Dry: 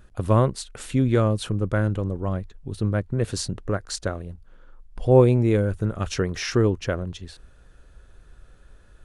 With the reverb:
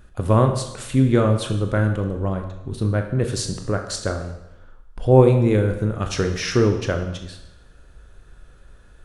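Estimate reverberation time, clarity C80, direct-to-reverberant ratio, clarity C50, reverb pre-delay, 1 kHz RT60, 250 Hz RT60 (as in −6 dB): 0.90 s, 10.0 dB, 5.0 dB, 8.0 dB, 21 ms, 0.90 s, 0.95 s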